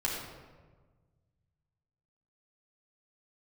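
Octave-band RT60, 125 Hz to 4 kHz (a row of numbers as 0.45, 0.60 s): 2.6, 1.8, 1.5, 1.3, 1.1, 0.80 s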